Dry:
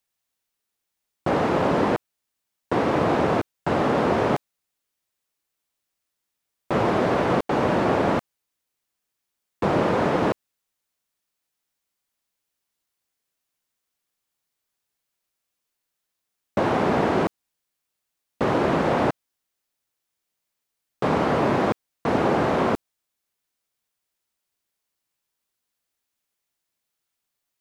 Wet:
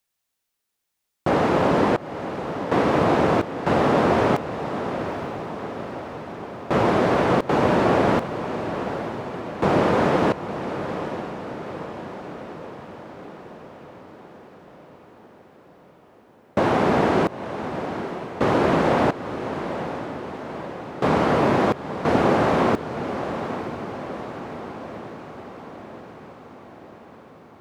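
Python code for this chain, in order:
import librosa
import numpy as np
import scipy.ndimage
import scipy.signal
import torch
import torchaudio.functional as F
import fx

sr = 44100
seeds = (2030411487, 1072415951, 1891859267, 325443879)

p1 = x + fx.echo_diffused(x, sr, ms=889, feedback_pct=62, wet_db=-9.5, dry=0)
y = p1 * 10.0 ** (2.0 / 20.0)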